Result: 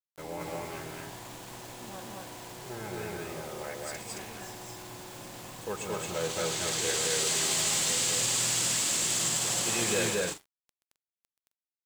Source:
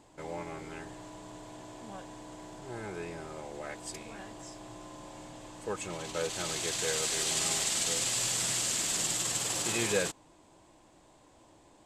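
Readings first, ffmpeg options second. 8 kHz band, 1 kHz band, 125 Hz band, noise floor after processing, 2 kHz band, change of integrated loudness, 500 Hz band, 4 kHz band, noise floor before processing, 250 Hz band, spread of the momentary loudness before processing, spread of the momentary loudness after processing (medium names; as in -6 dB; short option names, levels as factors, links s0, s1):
+3.0 dB, +3.0 dB, +3.5 dB, under -85 dBFS, +3.0 dB, +2.5 dB, +2.5 dB, +3.0 dB, -60 dBFS, +2.0 dB, 19 LU, 18 LU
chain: -filter_complex "[0:a]asoftclip=type=hard:threshold=0.0531,bandreject=f=403:t=h:w=4,bandreject=f=806:t=h:w=4,bandreject=f=1209:t=h:w=4,bandreject=f=1612:t=h:w=4,bandreject=f=2015:t=h:w=4,bandreject=f=2418:t=h:w=4,bandreject=f=2821:t=h:w=4,bandreject=f=3224:t=h:w=4,bandreject=f=3627:t=h:w=4,bandreject=f=4030:t=h:w=4,bandreject=f=4433:t=h:w=4,bandreject=f=4836:t=h:w=4,bandreject=f=5239:t=h:w=4,bandreject=f=5642:t=h:w=4,bandreject=f=6045:t=h:w=4,bandreject=f=6448:t=h:w=4,bandreject=f=6851:t=h:w=4,bandreject=f=7254:t=h:w=4,bandreject=f=7657:t=h:w=4,bandreject=f=8060:t=h:w=4,bandreject=f=8463:t=h:w=4,bandreject=f=8866:t=h:w=4,bandreject=f=9269:t=h:w=4,bandreject=f=9672:t=h:w=4,bandreject=f=10075:t=h:w=4,bandreject=f=10478:t=h:w=4,bandreject=f=10881:t=h:w=4,bandreject=f=11284:t=h:w=4,bandreject=f=11687:t=h:w=4,acrusher=bits=7:mix=0:aa=0.000001,asplit=2[s0][s1];[s1]aecho=0:1:128.3|221.6|265.3:0.316|1|0.316[s2];[s0][s2]amix=inputs=2:normalize=0"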